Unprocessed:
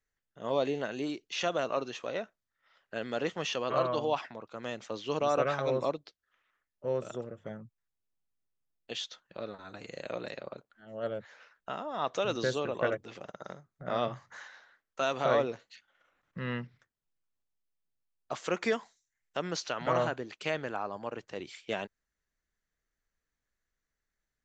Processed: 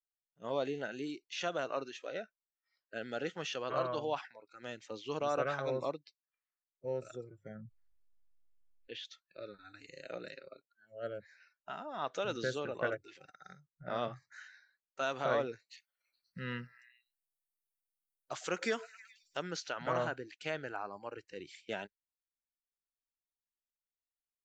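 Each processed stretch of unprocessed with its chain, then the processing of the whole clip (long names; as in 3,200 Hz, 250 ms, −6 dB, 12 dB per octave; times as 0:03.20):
0:07.55–0:09.05: low-pass filter 2,700 Hz + envelope flattener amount 50%
0:15.69–0:19.43: high-shelf EQ 4,200 Hz +9.5 dB + echo through a band-pass that steps 106 ms, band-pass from 680 Hz, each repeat 0.7 octaves, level −10.5 dB
whole clip: noise reduction from a noise print of the clip's start 19 dB; dynamic equaliser 1,500 Hz, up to +5 dB, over −52 dBFS, Q 6.4; level −5.5 dB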